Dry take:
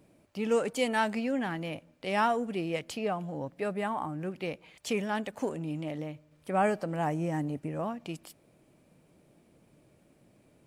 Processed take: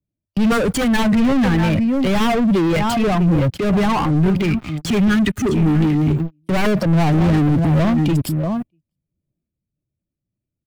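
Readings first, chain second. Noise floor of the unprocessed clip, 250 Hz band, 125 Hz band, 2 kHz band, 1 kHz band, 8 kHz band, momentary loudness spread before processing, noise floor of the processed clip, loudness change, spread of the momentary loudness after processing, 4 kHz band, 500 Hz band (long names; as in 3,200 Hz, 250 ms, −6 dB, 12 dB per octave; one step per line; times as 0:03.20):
−65 dBFS, +19.0 dB, +22.0 dB, +11.5 dB, +9.0 dB, +13.0 dB, 11 LU, −83 dBFS, +15.0 dB, 6 LU, +13.5 dB, +10.5 dB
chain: spectral dynamics exaggerated over time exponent 1.5
low-shelf EQ 110 Hz −9.5 dB
slap from a distant wall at 110 metres, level −15 dB
noise gate with hold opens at −45 dBFS
gain on a spectral selection 0:04.15–0:06.28, 450–1,200 Hz −25 dB
wave folding −28 dBFS
leveller curve on the samples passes 5
bass and treble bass +13 dB, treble −5 dB
transient designer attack −5 dB, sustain +6 dB
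multiband upward and downward compressor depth 40%
level +9 dB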